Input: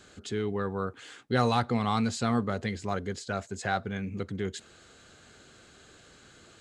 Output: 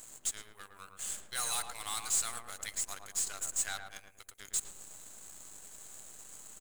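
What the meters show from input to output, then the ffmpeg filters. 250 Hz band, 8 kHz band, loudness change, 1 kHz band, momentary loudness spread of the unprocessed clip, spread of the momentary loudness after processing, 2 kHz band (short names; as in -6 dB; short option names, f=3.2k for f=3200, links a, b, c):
-30.5 dB, +13.0 dB, -4.5 dB, -13.5 dB, 10 LU, 18 LU, -8.0 dB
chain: -filter_complex "[0:a]highpass=740,aderivative,acontrast=37,aexciter=amount=7.3:drive=4.8:freq=6.9k,asoftclip=type=tanh:threshold=-27dB,aeval=exprs='0.0447*(cos(1*acos(clip(val(0)/0.0447,-1,1)))-cos(1*PI/2))+0.00251*(cos(4*acos(clip(val(0)/0.0447,-1,1)))-cos(4*PI/2))+0.00562*(cos(5*acos(clip(val(0)/0.0447,-1,1)))-cos(5*PI/2))+0.00891*(cos(7*acos(clip(val(0)/0.0447,-1,1)))-cos(7*PI/2))+0.00158*(cos(8*acos(clip(val(0)/0.0447,-1,1)))-cos(8*PI/2))':c=same,asplit=2[a][b];[b]adelay=111,lowpass=f=1k:p=1,volume=-3dB,asplit=2[c][d];[d]adelay=111,lowpass=f=1k:p=1,volume=0.45,asplit=2[e][f];[f]adelay=111,lowpass=f=1k:p=1,volume=0.45,asplit=2[g][h];[h]adelay=111,lowpass=f=1k:p=1,volume=0.45,asplit=2[i][j];[j]adelay=111,lowpass=f=1k:p=1,volume=0.45,asplit=2[k][l];[l]adelay=111,lowpass=f=1k:p=1,volume=0.45[m];[a][c][e][g][i][k][m]amix=inputs=7:normalize=0"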